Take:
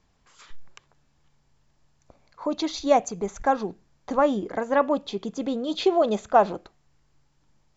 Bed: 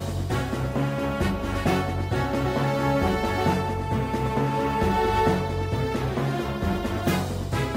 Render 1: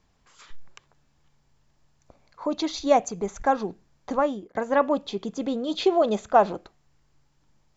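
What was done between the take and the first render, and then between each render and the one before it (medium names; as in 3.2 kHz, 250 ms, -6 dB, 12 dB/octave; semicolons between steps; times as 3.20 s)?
4.11–4.55 s: fade out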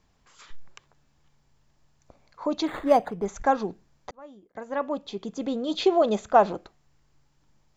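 2.67–3.26 s: decimation joined by straight lines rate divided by 8×; 4.11–5.72 s: fade in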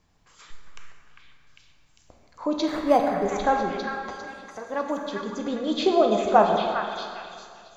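repeats whose band climbs or falls 400 ms, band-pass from 1.7 kHz, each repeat 0.7 oct, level -1 dB; plate-style reverb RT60 2.2 s, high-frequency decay 0.6×, DRR 2.5 dB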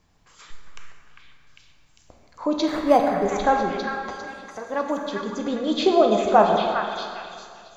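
trim +2.5 dB; peak limiter -3 dBFS, peak gain reduction 2 dB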